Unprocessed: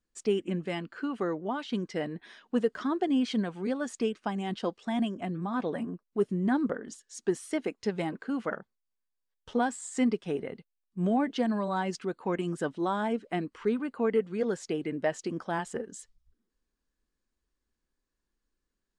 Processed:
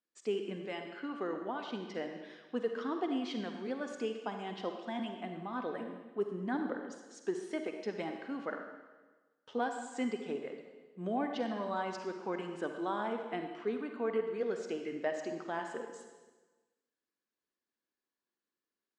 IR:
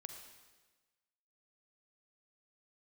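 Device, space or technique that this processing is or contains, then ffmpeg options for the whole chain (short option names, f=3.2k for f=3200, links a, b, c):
supermarket ceiling speaker: -filter_complex "[0:a]highpass=270,lowpass=5.5k[a];[1:a]atrim=start_sample=2205[b];[a][b]afir=irnorm=-1:irlink=0"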